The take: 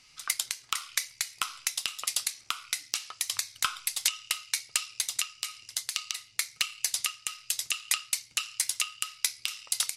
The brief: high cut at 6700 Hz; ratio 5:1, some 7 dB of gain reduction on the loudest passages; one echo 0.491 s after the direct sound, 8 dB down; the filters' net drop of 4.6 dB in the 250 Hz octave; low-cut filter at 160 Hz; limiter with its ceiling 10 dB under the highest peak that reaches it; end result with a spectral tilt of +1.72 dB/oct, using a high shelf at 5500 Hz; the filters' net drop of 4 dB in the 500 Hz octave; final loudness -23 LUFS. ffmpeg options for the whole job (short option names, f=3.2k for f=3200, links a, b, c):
-af "highpass=160,lowpass=6.7k,equalizer=f=250:t=o:g=-3.5,equalizer=f=500:t=o:g=-4.5,highshelf=f=5.5k:g=5,acompressor=threshold=-33dB:ratio=5,alimiter=limit=-21dB:level=0:latency=1,aecho=1:1:491:0.398,volume=18dB"